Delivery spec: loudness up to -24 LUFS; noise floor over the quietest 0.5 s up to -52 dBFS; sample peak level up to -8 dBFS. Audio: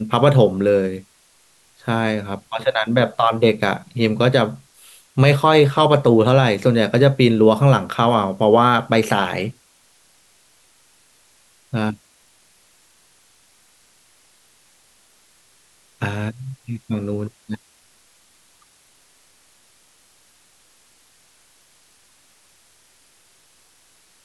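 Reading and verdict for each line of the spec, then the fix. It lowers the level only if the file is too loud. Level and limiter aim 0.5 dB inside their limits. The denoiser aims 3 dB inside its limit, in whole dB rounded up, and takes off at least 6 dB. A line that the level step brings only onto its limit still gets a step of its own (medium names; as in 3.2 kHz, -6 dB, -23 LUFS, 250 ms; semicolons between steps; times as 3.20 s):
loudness -17.5 LUFS: fail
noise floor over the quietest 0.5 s -56 dBFS: pass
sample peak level -2.0 dBFS: fail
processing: trim -7 dB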